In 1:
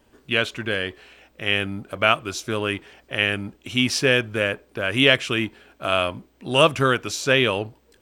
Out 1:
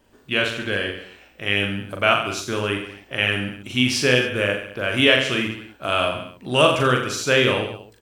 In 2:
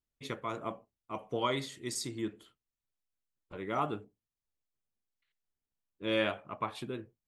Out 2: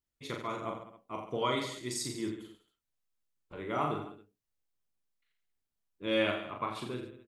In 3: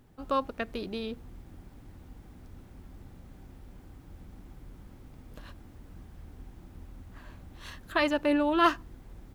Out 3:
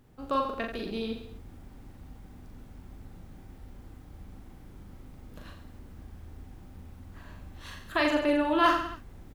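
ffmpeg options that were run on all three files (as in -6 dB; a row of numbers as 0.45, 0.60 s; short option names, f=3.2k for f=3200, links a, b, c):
-af "aecho=1:1:40|86|138.9|199.7|269.7:0.631|0.398|0.251|0.158|0.1,volume=-1dB"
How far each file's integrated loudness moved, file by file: +1.0, +1.0, +0.5 LU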